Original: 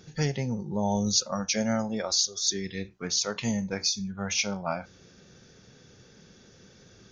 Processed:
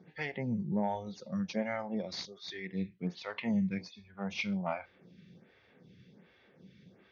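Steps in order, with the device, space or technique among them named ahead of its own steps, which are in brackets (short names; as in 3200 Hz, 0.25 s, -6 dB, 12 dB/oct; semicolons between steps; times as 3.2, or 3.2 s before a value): vibe pedal into a guitar amplifier (photocell phaser 1.3 Hz; tube stage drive 16 dB, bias 0.25; speaker cabinet 94–3500 Hz, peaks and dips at 180 Hz +7 dB, 440 Hz -3 dB, 1400 Hz -6 dB, 2100 Hz +7 dB); gain -2 dB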